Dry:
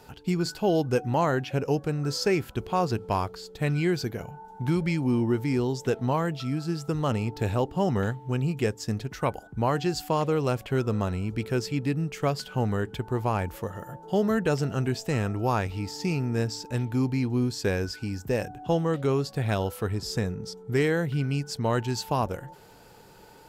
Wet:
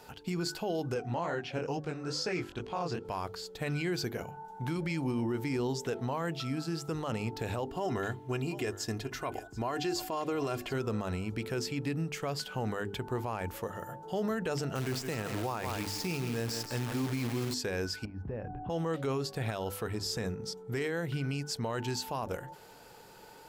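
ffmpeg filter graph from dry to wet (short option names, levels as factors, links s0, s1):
-filter_complex "[0:a]asettb=1/sr,asplit=3[s0][s1][s2];[s0]atrim=end=0.944[s3];[s1]atrim=start=0.94:end=3.05,asetpts=PTS-STARTPTS,afade=t=in:d=0.004:c=qsin,afade=t=out:st=2.106:d=0.004:c=qsin,lowpass=7100,flanger=delay=17.5:depth=7.6:speed=2.3[s4];[s2]atrim=start=3.046[s5];[s3][s4]acrossfade=d=0.004:c1=hsin:c2=qsin[s6];[s6][s5]acrossfade=d=0.004:c1=qsin:c2=hsin,asettb=1/sr,asplit=3[s7][s8][s9];[s7]atrim=end=7.704[s10];[s8]atrim=start=7.7:end=10.74,asetpts=PTS-STARTPTS,afade=t=in:d=0.004:c=qsin,afade=t=out:st=3.036:d=0.004:c=qsin,aecho=1:1:2.9:0.54,atrim=end_sample=134064,aecho=1:1:731:0.0891,atrim=end_sample=134064[s11];[s9]atrim=start=10.736[s12];[s10][s11]acrossfade=d=0.004:c1=hsin:c2=qsin[s13];[s13][s12]acrossfade=d=0.004:c1=qsin:c2=hsin,asettb=1/sr,asplit=3[s14][s15][s16];[s14]atrim=end=14.754[s17];[s15]atrim=start=14.75:end=17.54,asetpts=PTS-STARTPTS,afade=t=in:d=0.004:c=qsin,afade=t=out:st=2.786:d=0.004:c=qsin,acrusher=bits=7:dc=4:mix=0:aa=0.000001,aecho=1:1:164:0.299,atrim=end_sample=123039[s18];[s16]atrim=start=17.536[s19];[s17][s18]acrossfade=d=0.004:c1=hsin:c2=qsin[s20];[s20][s19]acrossfade=d=0.004:c1=qsin:c2=hsin,asettb=1/sr,asplit=3[s21][s22][s23];[s21]atrim=end=18.054[s24];[s22]atrim=start=18.05:end=18.7,asetpts=PTS-STARTPTS,afade=t=in:d=0.004:c=qsin,afade=t=out:st=0.646:d=0.004:c=qsin,lowpass=1700,aemphasis=mode=reproduction:type=bsi,acompressor=threshold=0.0355:ratio=10:attack=3.2:release=140:knee=1:detection=peak[s25];[s23]atrim=start=18.696[s26];[s24][s25]acrossfade=d=0.004:c1=hsin:c2=qsin[s27];[s27][s26]acrossfade=d=0.004:c1=qsin:c2=hsin,lowshelf=f=250:g=-6.5,bandreject=f=50:t=h:w=6,bandreject=f=100:t=h:w=6,bandreject=f=150:t=h:w=6,bandreject=f=200:t=h:w=6,bandreject=f=250:t=h:w=6,bandreject=f=300:t=h:w=6,bandreject=f=350:t=h:w=6,bandreject=f=400:t=h:w=6,alimiter=level_in=1.12:limit=0.0631:level=0:latency=1:release=36,volume=0.891"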